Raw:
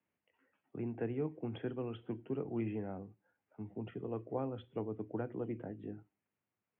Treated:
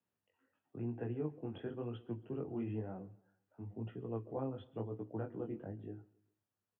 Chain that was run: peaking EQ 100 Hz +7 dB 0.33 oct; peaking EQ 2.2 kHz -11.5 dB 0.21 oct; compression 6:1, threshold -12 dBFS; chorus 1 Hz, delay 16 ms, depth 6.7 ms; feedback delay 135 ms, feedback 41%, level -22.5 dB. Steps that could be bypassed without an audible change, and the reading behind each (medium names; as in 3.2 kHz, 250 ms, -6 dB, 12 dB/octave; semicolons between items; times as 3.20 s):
compression, threshold -12 dBFS: peak at its input -25.0 dBFS